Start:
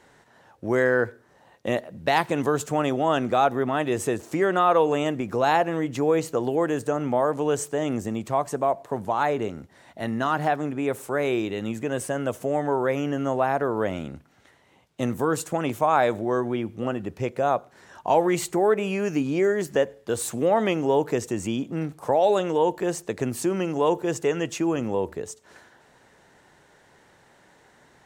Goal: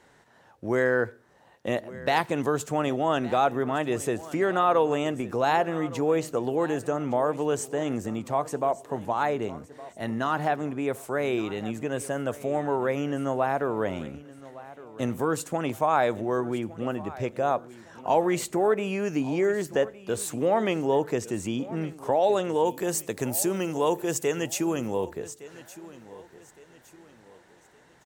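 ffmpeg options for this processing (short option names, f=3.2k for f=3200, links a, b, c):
-filter_complex "[0:a]asettb=1/sr,asplit=3[a][b][c];[a]atrim=end=22.654[d];[b]atrim=start=22.65:end=25.05,asetpts=PTS-STARTPTS,afade=t=in:d=0.004:c=qsin,afade=t=out:st=2.396:d=0.004:c=qsin,aemphasis=mode=production:type=50fm[e];[c]atrim=start=25.046[f];[d][e]acrossfade=d=0.004:c1=hsin:c2=qsin[g];[g][f]acrossfade=d=0.004:c1=qsin:c2=hsin,aecho=1:1:1163|2326|3489:0.126|0.0466|0.0172,volume=-2.5dB"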